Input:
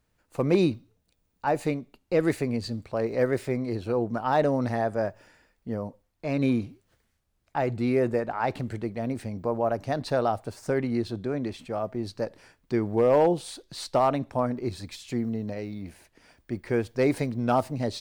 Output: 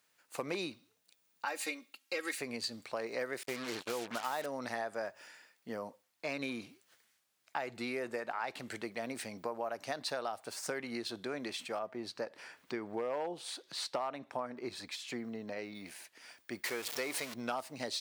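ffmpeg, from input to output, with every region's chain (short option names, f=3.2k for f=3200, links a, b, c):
-filter_complex "[0:a]asettb=1/sr,asplit=3[a][b][c];[a]atrim=end=1.454[d];[b]atrim=start=1.45:end=2.38,asetpts=PTS-STARTPTS,afade=t=in:d=0.004:c=qsin,afade=t=out:st=0.926:d=0.004:c=qsin,highpass=400,equalizer=f=690:t=o:w=1.4:g=-9,aecho=1:1:3.7:0.98,atrim=end_sample=41013[e];[c]atrim=start=2.376[f];[d][e]acrossfade=d=0.004:c1=hsin:c2=qsin[g];[g][f]acrossfade=d=0.004:c1=qsin:c2=hsin,asettb=1/sr,asplit=3[h][i][j];[h]atrim=end=3.434[k];[i]atrim=start=3.43:end=4.46,asetpts=PTS-STARTPTS,afade=t=in:d=0.004:c=qsin,afade=t=out:st=1.026:d=0.004:c=qsin,acrusher=bits=5:mix=0:aa=0.5,agate=range=-19dB:threshold=-38dB:ratio=16:release=100:detection=peak[l];[j]atrim=start=4.456[m];[k][l]acrossfade=d=0.004:c1=hsin:c2=qsin[n];[n][m]acrossfade=d=0.004:c1=qsin:c2=hsin,asettb=1/sr,asplit=3[o][p][q];[o]atrim=end=11.794[r];[p]atrim=start=11.79:end=15.75,asetpts=PTS-STARTPTS,afade=t=in:d=0.004:c=qsin,afade=t=out:st=3.956:d=0.004:c=qsin,acompressor=mode=upward:threshold=-42dB:ratio=2.5:attack=3.2:release=140:knee=2.83:detection=peak,highshelf=f=3.6k:g=-11[s];[q]atrim=start=15.746[t];[r][s]acrossfade=d=0.004:c1=hsin:c2=qsin[u];[u][t]acrossfade=d=0.004:c1=qsin:c2=hsin,asettb=1/sr,asplit=3[v][w][x];[v]atrim=end=16.644[y];[w]atrim=start=16.64:end=17.34,asetpts=PTS-STARTPTS,afade=t=in:d=0.004:c=qsin,afade=t=out:st=0.696:d=0.004:c=qsin,aeval=exprs='val(0)+0.5*0.0266*sgn(val(0))':c=same,lowshelf=f=250:g=-7.5,bandreject=f=1.6k:w=16[z];[x]atrim=start=17.336[aa];[y][z]acrossfade=d=0.004:c1=hsin:c2=qsin[ab];[ab][aa]acrossfade=d=0.004:c1=qsin:c2=hsin,tiltshelf=f=770:g=-8.5,acompressor=threshold=-32dB:ratio=6,highpass=200,volume=-2dB"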